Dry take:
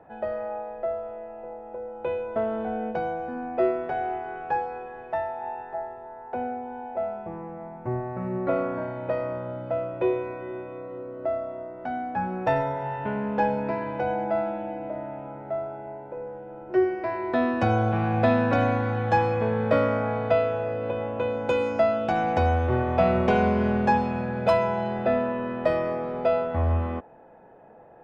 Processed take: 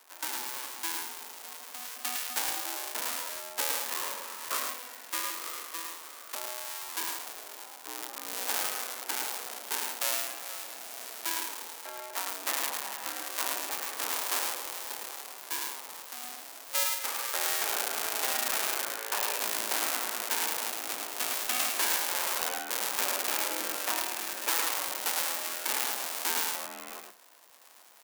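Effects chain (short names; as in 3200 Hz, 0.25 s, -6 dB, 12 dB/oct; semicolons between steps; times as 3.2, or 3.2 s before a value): cycle switcher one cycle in 2, inverted; Chebyshev high-pass 200 Hz, order 10; differentiator; limiter -13.5 dBFS, peak gain reduction 8 dB; on a send: echo 0.107 s -4.5 dB; on the sum: gain +6.5 dB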